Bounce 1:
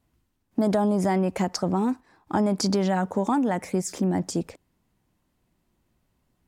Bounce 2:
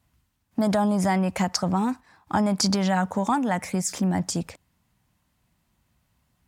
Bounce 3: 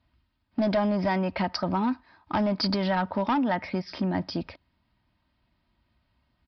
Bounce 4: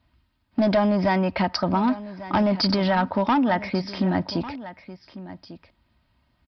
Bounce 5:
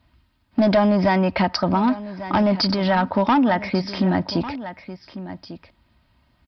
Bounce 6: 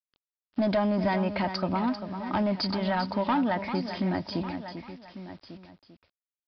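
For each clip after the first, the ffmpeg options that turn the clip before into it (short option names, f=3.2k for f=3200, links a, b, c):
-af "highpass=46,equalizer=f=370:t=o:w=1.3:g=-11.5,volume=5dB"
-af "aecho=1:1:3.2:0.43,aresample=11025,asoftclip=type=hard:threshold=-17.5dB,aresample=44100,volume=-1.5dB"
-af "aecho=1:1:1147:0.168,volume=4.5dB"
-af "alimiter=limit=-16dB:level=0:latency=1:release=345,volume=5dB"
-af "aresample=11025,acrusher=bits=7:mix=0:aa=0.000001,aresample=44100,aecho=1:1:394:0.335,volume=-8.5dB"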